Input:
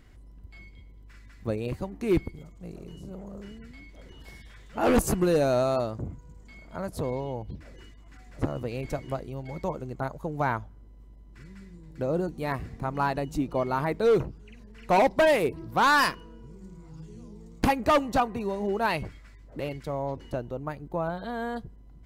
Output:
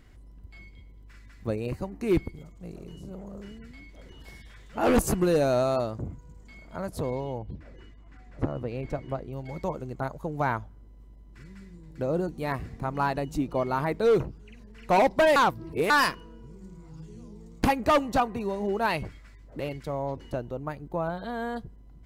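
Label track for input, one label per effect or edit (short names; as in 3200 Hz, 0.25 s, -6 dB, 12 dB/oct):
1.530000	2.070000	notch 3400 Hz, Q 5.1
7.380000	9.330000	LPF 2000 Hz 6 dB/oct
15.360000	15.900000	reverse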